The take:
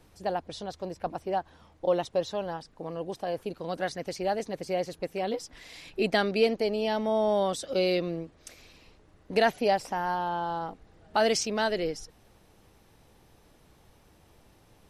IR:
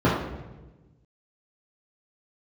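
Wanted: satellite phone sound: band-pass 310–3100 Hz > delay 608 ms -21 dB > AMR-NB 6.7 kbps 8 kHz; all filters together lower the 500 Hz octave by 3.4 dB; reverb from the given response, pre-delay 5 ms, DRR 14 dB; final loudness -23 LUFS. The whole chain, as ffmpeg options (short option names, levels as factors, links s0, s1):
-filter_complex "[0:a]equalizer=f=500:t=o:g=-3.5,asplit=2[s0][s1];[1:a]atrim=start_sample=2205,adelay=5[s2];[s1][s2]afir=irnorm=-1:irlink=0,volume=0.0224[s3];[s0][s3]amix=inputs=2:normalize=0,highpass=310,lowpass=3100,aecho=1:1:608:0.0891,volume=3.16" -ar 8000 -c:a libopencore_amrnb -b:a 6700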